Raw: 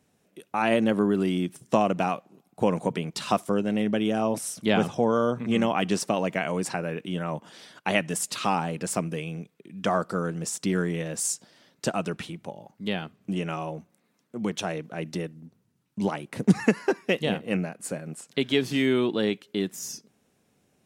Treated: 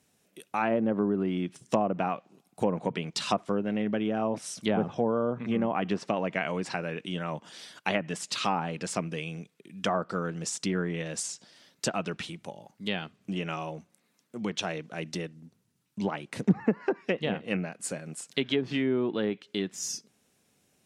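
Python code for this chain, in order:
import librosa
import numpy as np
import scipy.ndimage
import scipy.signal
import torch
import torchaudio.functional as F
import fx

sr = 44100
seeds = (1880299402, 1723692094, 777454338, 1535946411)

y = fx.env_lowpass_down(x, sr, base_hz=930.0, full_db=-18.5)
y = fx.high_shelf(y, sr, hz=2000.0, db=8.5)
y = y * 10.0 ** (-4.0 / 20.0)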